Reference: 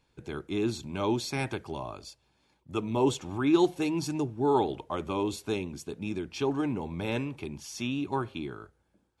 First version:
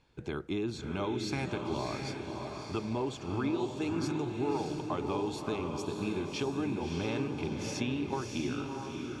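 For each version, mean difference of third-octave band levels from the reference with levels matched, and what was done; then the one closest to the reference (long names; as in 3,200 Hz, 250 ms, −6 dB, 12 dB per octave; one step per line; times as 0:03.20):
8.0 dB: downward compressor, threshold −34 dBFS, peak gain reduction 15.5 dB
high-frequency loss of the air 58 metres
on a send: feedback delay with all-pass diffusion 625 ms, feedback 47%, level −3.5 dB
on the sum: level +3 dB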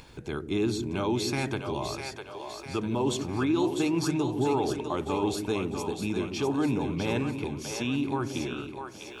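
6.0 dB: brickwall limiter −22 dBFS, peak gain reduction 10 dB
upward compression, threshold −40 dBFS
echo with a time of its own for lows and highs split 400 Hz, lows 141 ms, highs 651 ms, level −6 dB
level +3 dB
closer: second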